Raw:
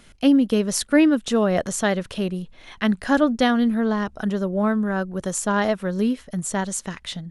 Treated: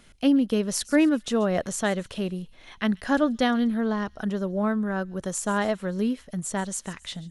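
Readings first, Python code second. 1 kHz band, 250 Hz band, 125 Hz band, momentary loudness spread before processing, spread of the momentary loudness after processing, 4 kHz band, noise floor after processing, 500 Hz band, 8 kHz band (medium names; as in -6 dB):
-4.0 dB, -4.0 dB, -4.0 dB, 10 LU, 10 LU, -4.0 dB, -53 dBFS, -4.0 dB, -4.0 dB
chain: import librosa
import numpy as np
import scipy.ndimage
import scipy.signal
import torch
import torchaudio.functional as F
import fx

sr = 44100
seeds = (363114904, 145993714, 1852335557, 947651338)

y = fx.echo_wet_highpass(x, sr, ms=135, feedback_pct=41, hz=3800.0, wet_db=-16.5)
y = F.gain(torch.from_numpy(y), -4.0).numpy()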